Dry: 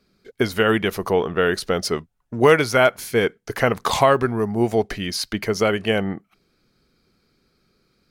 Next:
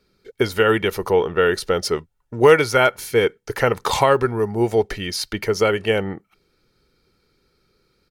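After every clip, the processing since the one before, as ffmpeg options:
-af "aecho=1:1:2.2:0.4"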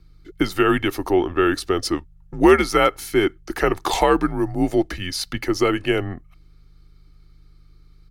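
-af "aeval=exprs='val(0)+0.00501*(sin(2*PI*50*n/s)+sin(2*PI*2*50*n/s)/2+sin(2*PI*3*50*n/s)/3+sin(2*PI*4*50*n/s)/4+sin(2*PI*5*50*n/s)/5)':c=same,afreqshift=-85,volume=-1dB"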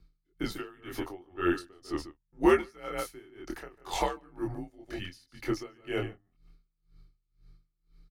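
-filter_complex "[0:a]flanger=delay=22.5:depth=4.1:speed=0.76,asplit=2[a][b];[b]adelay=145.8,volume=-10dB,highshelf=f=4k:g=-3.28[c];[a][c]amix=inputs=2:normalize=0,aeval=exprs='val(0)*pow(10,-28*(0.5-0.5*cos(2*PI*2*n/s))/20)':c=same,volume=-5dB"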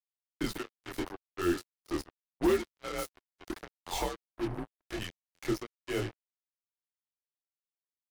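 -filter_complex "[0:a]asoftclip=type=hard:threshold=-19dB,acrusher=bits=5:mix=0:aa=0.5,acrossover=split=460|3000[a][b][c];[b]acompressor=threshold=-39dB:ratio=2[d];[a][d][c]amix=inputs=3:normalize=0"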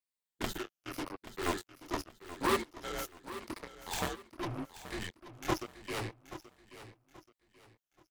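-af "afftfilt=real='re*pow(10,7/40*sin(2*PI*(0.95*log(max(b,1)*sr/1024/100)/log(2)-(-0.84)*(pts-256)/sr)))':imag='im*pow(10,7/40*sin(2*PI*(0.95*log(max(b,1)*sr/1024/100)/log(2)-(-0.84)*(pts-256)/sr)))':win_size=1024:overlap=0.75,aeval=exprs='0.178*(cos(1*acos(clip(val(0)/0.178,-1,1)))-cos(1*PI/2))+0.0708*(cos(7*acos(clip(val(0)/0.178,-1,1)))-cos(7*PI/2))':c=same,aecho=1:1:830|1660|2490:0.2|0.0638|0.0204,volume=-4.5dB"

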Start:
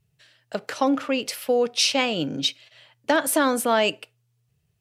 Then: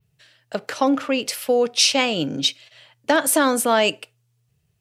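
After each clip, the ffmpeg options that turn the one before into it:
-af "adynamicequalizer=threshold=0.0141:dfrequency=7700:dqfactor=0.92:tfrequency=7700:tqfactor=0.92:attack=5:release=100:ratio=0.375:range=2:mode=boostabove:tftype=bell,volume=2.5dB"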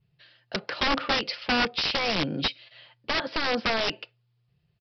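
-af "aecho=1:1:5.7:0.33,alimiter=limit=-11dB:level=0:latency=1:release=93,aresample=11025,aeval=exprs='(mod(6.31*val(0)+1,2)-1)/6.31':c=same,aresample=44100,volume=-2.5dB"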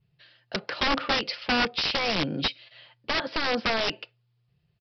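-af anull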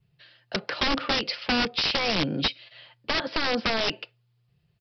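-filter_complex "[0:a]acrossover=split=440|3000[a][b][c];[b]acompressor=threshold=-28dB:ratio=6[d];[a][d][c]amix=inputs=3:normalize=0,volume=2dB"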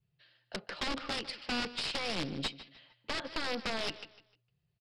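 -af "aecho=1:1:152|304|456:0.178|0.0533|0.016,aeval=exprs='(tanh(5.62*val(0)+0.7)-tanh(0.7))/5.62':c=same,volume=-7dB"

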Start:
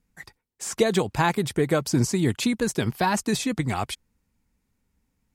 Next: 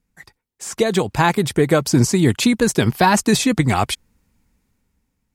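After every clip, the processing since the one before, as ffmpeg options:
-af "dynaudnorm=f=210:g=9:m=11.5dB"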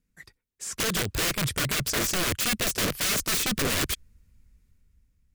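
-af "asubboost=boost=5.5:cutoff=110,aeval=exprs='(mod(5.96*val(0)+1,2)-1)/5.96':c=same,equalizer=f=840:t=o:w=0.62:g=-10.5,volume=-4.5dB"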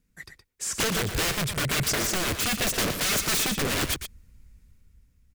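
-af "aeval=exprs='0.158*(cos(1*acos(clip(val(0)/0.158,-1,1)))-cos(1*PI/2))+0.0251*(cos(5*acos(clip(val(0)/0.158,-1,1)))-cos(5*PI/2))':c=same,alimiter=limit=-19.5dB:level=0:latency=1:release=447,aecho=1:1:118:0.376"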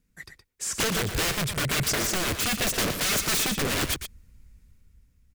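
-af anull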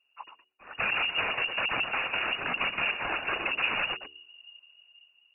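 -af "afftfilt=real='hypot(re,im)*cos(2*PI*random(0))':imag='hypot(re,im)*sin(2*PI*random(1))':win_size=512:overlap=0.75,lowpass=f=2.5k:t=q:w=0.5098,lowpass=f=2.5k:t=q:w=0.6013,lowpass=f=2.5k:t=q:w=0.9,lowpass=f=2.5k:t=q:w=2.563,afreqshift=-2900,bandreject=f=74.6:t=h:w=4,bandreject=f=149.2:t=h:w=4,bandreject=f=223.8:t=h:w=4,bandreject=f=298.4:t=h:w=4,bandreject=f=373:t=h:w=4,bandreject=f=447.6:t=h:w=4,volume=5dB"

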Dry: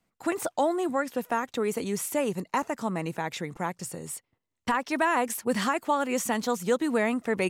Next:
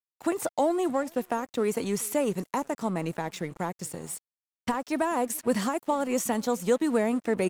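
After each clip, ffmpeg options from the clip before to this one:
-filter_complex "[0:a]acrossover=split=880|5400[a][b][c];[b]acompressor=threshold=-39dB:ratio=6[d];[a][d][c]amix=inputs=3:normalize=0,aecho=1:1:431:0.0631,aeval=exprs='sgn(val(0))*max(abs(val(0))-0.00355,0)':c=same,volume=2dB"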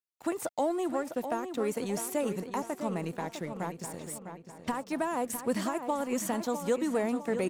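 -filter_complex "[0:a]asplit=2[a][b];[b]adelay=654,lowpass=f=3.8k:p=1,volume=-8.5dB,asplit=2[c][d];[d]adelay=654,lowpass=f=3.8k:p=1,volume=0.45,asplit=2[e][f];[f]adelay=654,lowpass=f=3.8k:p=1,volume=0.45,asplit=2[g][h];[h]adelay=654,lowpass=f=3.8k:p=1,volume=0.45,asplit=2[i][j];[j]adelay=654,lowpass=f=3.8k:p=1,volume=0.45[k];[a][c][e][g][i][k]amix=inputs=6:normalize=0,volume=-4.5dB"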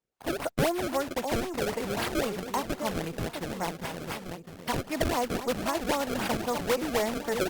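-filter_complex "[0:a]acrossover=split=460|2500[a][b][c];[a]asoftclip=type=tanh:threshold=-39.5dB[d];[d][b][c]amix=inputs=3:normalize=0,acrusher=samples=27:mix=1:aa=0.000001:lfo=1:lforange=43.2:lforate=3.8,volume=5dB" -ar 48000 -c:a libopus -b:a 32k

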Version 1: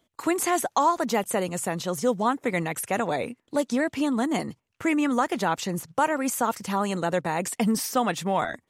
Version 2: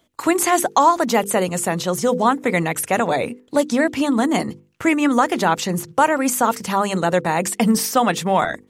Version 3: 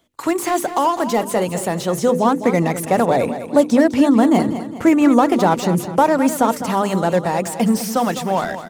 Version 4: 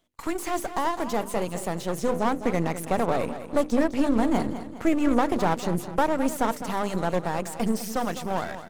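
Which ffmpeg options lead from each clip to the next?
-af "bandreject=f=50:t=h:w=6,bandreject=f=100:t=h:w=6,bandreject=f=150:t=h:w=6,bandreject=f=200:t=h:w=6,bandreject=f=250:t=h:w=6,bandreject=f=300:t=h:w=6,bandreject=f=350:t=h:w=6,bandreject=f=400:t=h:w=6,bandreject=f=450:t=h:w=6,bandreject=f=500:t=h:w=6,volume=7.5dB"
-filter_complex "[0:a]acrossover=split=960[a][b];[a]dynaudnorm=f=200:g=21:m=11.5dB[c];[b]asoftclip=type=hard:threshold=-25dB[d];[c][d]amix=inputs=2:normalize=0,aecho=1:1:206|412|618|824:0.266|0.117|0.0515|0.0227,volume=-1dB"
-af "aeval=exprs='if(lt(val(0),0),0.251*val(0),val(0))':c=same,volume=-6dB"

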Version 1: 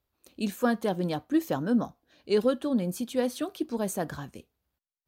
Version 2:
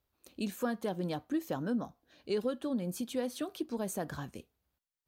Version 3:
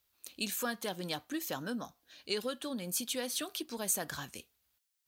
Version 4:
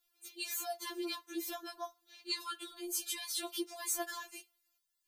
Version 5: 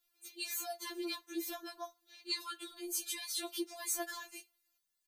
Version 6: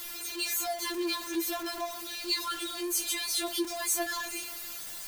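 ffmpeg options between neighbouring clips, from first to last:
-af "acompressor=threshold=-34dB:ratio=2,volume=-1dB"
-af "tiltshelf=f=1.3k:g=-9,volume=2.5dB"
-af "afftfilt=real='re*4*eq(mod(b,16),0)':imag='im*4*eq(mod(b,16),0)':win_size=2048:overlap=0.75,volume=1dB"
-filter_complex "[0:a]asplit=2[a][b];[b]adelay=15,volume=-12dB[c];[a][c]amix=inputs=2:normalize=0,volume=-1dB"
-af "aeval=exprs='val(0)+0.5*0.0112*sgn(val(0))':c=same,volume=5dB"

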